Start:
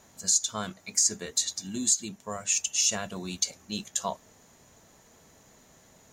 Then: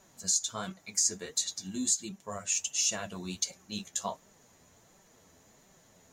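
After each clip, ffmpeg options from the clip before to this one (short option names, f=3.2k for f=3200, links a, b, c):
-af "flanger=delay=5.1:depth=6.8:regen=33:speed=1.4:shape=sinusoidal"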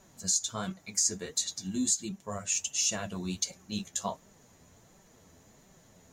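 -af "lowshelf=f=290:g=6.5"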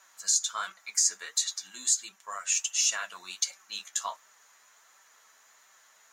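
-af "highpass=f=1.3k:t=q:w=1.9,volume=2.5dB"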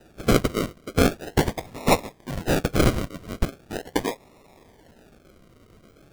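-af "acrusher=samples=40:mix=1:aa=0.000001:lfo=1:lforange=24:lforate=0.4,volume=7.5dB"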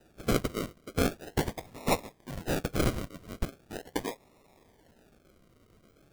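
-af "highshelf=f=8.1k:g=3.5,volume=-8.5dB"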